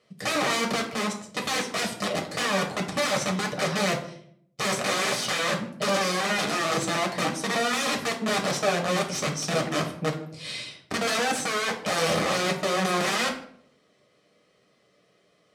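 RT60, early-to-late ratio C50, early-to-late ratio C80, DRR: 0.65 s, 9.0 dB, 13.0 dB, 0.0 dB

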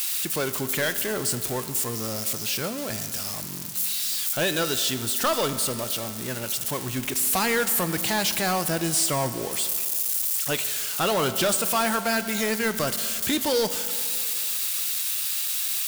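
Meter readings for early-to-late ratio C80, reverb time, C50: 12.5 dB, 2.5 s, 12.0 dB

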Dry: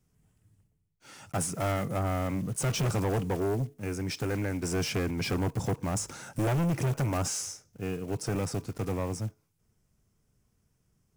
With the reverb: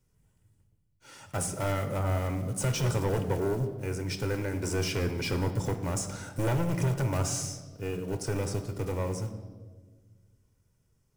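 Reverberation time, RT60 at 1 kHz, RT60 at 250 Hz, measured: 1.5 s, 1.2 s, 2.0 s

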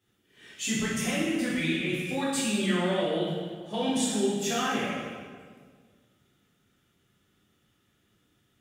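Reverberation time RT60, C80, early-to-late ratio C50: 1.8 s, 1.0 dB, -1.0 dB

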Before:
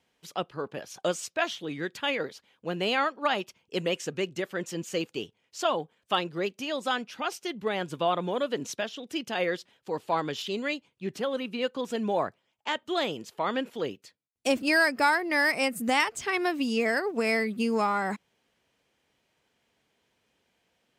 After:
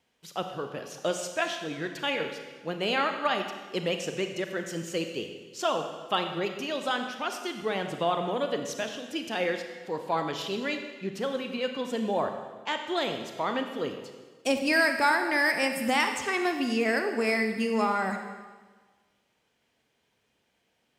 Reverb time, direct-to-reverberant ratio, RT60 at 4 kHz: 1.4 s, 5.5 dB, 1.3 s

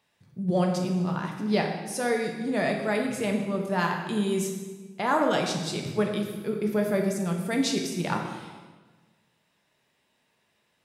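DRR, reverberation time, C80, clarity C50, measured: 1.5 dB, 1.4 s, 6.5 dB, 4.5 dB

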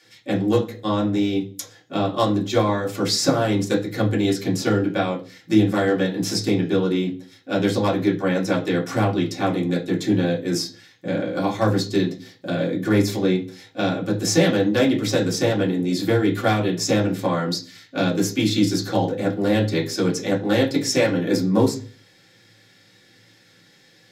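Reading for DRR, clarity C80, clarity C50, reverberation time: -3.5 dB, 18.0 dB, 12.0 dB, 0.40 s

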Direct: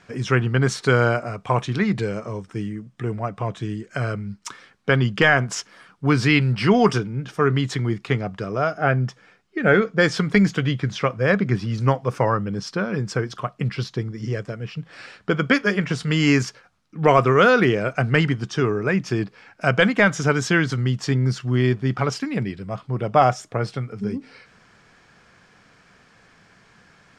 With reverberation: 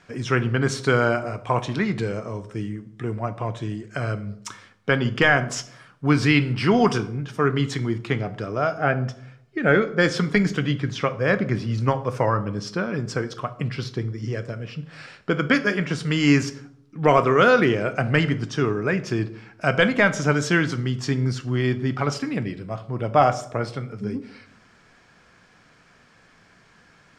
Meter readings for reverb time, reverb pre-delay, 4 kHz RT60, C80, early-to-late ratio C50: 0.70 s, 3 ms, 0.45 s, 18.5 dB, 15.5 dB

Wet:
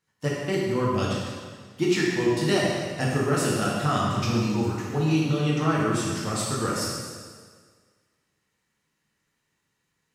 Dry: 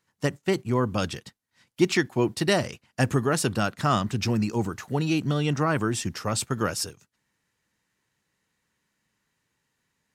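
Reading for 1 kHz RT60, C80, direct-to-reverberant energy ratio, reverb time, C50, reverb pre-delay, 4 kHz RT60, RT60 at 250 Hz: 1.7 s, 1.0 dB, -5.5 dB, 1.7 s, -1.0 dB, 5 ms, 1.6 s, 1.7 s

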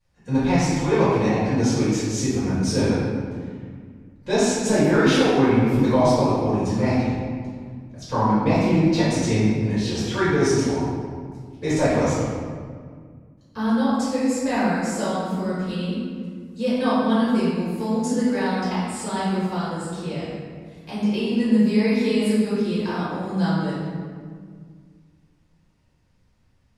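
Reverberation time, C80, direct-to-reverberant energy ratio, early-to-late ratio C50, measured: 1.9 s, 0.0 dB, -12.0 dB, -3.0 dB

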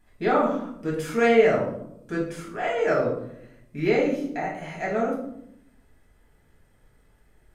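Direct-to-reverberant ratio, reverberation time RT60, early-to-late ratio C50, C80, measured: -4.5 dB, 0.75 s, 5.0 dB, 8.5 dB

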